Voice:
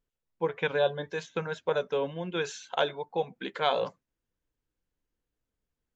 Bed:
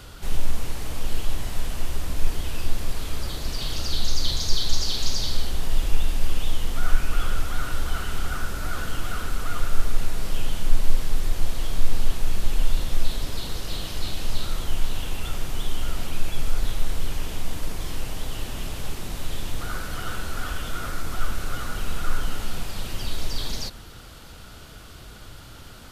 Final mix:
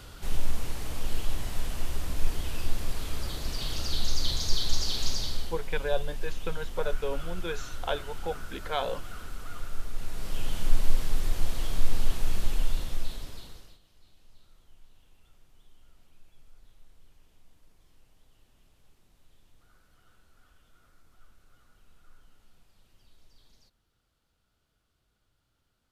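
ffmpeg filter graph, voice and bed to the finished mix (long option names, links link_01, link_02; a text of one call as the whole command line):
ffmpeg -i stem1.wav -i stem2.wav -filter_complex "[0:a]adelay=5100,volume=-4dB[link_01];[1:a]volume=4.5dB,afade=type=out:start_time=5.08:duration=0.55:silence=0.398107,afade=type=in:start_time=9.92:duration=0.71:silence=0.375837,afade=type=out:start_time=12.36:duration=1.43:silence=0.0354813[link_02];[link_01][link_02]amix=inputs=2:normalize=0" out.wav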